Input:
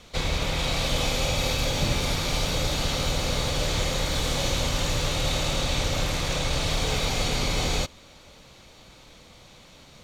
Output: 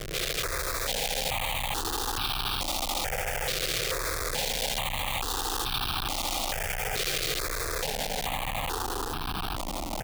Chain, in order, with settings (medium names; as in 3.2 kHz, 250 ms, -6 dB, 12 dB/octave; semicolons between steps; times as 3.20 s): peak limiter -22.5 dBFS, peak gain reduction 10 dB; band-stop 720 Hz, Q 12; mains buzz 50 Hz, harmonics 21, -65 dBFS -1 dB/octave; low-pass 4.8 kHz 24 dB/octave; peaking EQ 730 Hz +7 dB 0.42 oct; comb 2.5 ms, depth 55%; echo that smears into a reverb 1005 ms, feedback 48%, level -10.5 dB; Schmitt trigger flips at -44.5 dBFS; bass shelf 390 Hz -8.5 dB; stepped phaser 2.3 Hz 240–2000 Hz; trim +5.5 dB